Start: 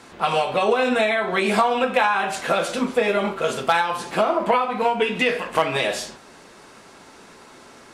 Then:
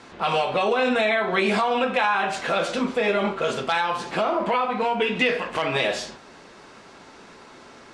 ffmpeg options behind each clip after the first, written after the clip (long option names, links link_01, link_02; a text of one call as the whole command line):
ffmpeg -i in.wav -filter_complex "[0:a]lowpass=6100,acrossover=split=2200[link_01][link_02];[link_01]alimiter=limit=-14.5dB:level=0:latency=1:release=21[link_03];[link_03][link_02]amix=inputs=2:normalize=0" out.wav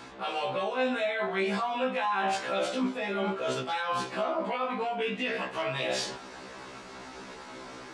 ffmpeg -i in.wav -af "areverse,acompressor=threshold=-31dB:ratio=5,areverse,afftfilt=real='re*1.73*eq(mod(b,3),0)':imag='im*1.73*eq(mod(b,3),0)':win_size=2048:overlap=0.75,volume=4.5dB" out.wav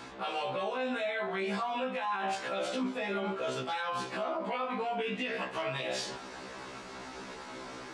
ffmpeg -i in.wav -af "alimiter=level_in=1dB:limit=-24dB:level=0:latency=1:release=153,volume=-1dB" out.wav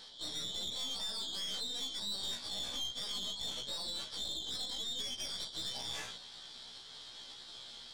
ffmpeg -i in.wav -af "afftfilt=real='real(if(lt(b,272),68*(eq(floor(b/68),0)*2+eq(floor(b/68),1)*3+eq(floor(b/68),2)*0+eq(floor(b/68),3)*1)+mod(b,68),b),0)':imag='imag(if(lt(b,272),68*(eq(floor(b/68),0)*2+eq(floor(b/68),1)*3+eq(floor(b/68),2)*0+eq(floor(b/68),3)*1)+mod(b,68),b),0)':win_size=2048:overlap=0.75,aeval=exprs='(tanh(35.5*val(0)+0.75)-tanh(0.75))/35.5':channel_layout=same,volume=-2dB" out.wav